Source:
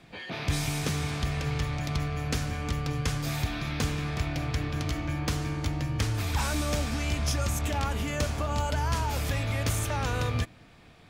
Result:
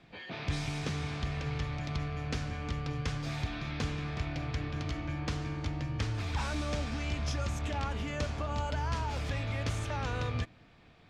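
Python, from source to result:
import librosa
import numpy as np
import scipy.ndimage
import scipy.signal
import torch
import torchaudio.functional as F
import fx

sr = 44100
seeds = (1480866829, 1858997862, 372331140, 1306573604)

y = scipy.signal.sosfilt(scipy.signal.butter(2, 5200.0, 'lowpass', fs=sr, output='sos'), x)
y = F.gain(torch.from_numpy(y), -5.0).numpy()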